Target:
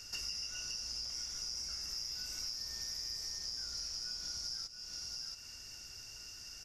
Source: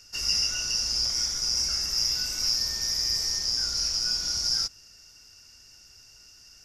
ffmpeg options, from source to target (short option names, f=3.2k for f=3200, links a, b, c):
-filter_complex "[0:a]asplit=2[a][b];[b]aecho=0:1:678:0.188[c];[a][c]amix=inputs=2:normalize=0,acompressor=threshold=-43dB:ratio=6,volume=2.5dB"